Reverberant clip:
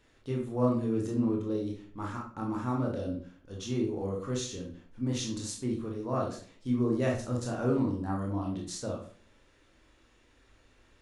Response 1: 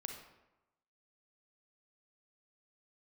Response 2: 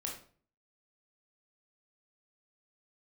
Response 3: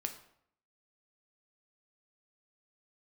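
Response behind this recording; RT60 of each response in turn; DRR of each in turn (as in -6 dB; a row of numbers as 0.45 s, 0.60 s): 2; 1.0 s, 0.45 s, 0.70 s; 3.0 dB, -1.5 dB, 5.0 dB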